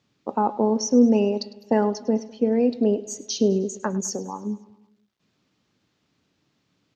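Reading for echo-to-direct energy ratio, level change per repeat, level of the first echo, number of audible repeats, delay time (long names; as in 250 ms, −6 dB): −17.0 dB, −5.0 dB, −18.5 dB, 4, 103 ms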